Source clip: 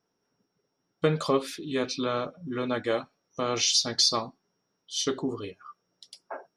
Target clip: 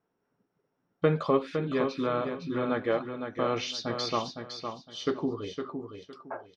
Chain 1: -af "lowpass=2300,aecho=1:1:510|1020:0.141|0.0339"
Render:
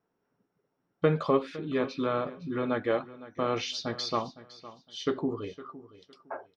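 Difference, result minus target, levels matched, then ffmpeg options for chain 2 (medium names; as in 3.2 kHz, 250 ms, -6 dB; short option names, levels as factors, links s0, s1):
echo-to-direct -10 dB
-af "lowpass=2300,aecho=1:1:510|1020|1530:0.447|0.107|0.0257"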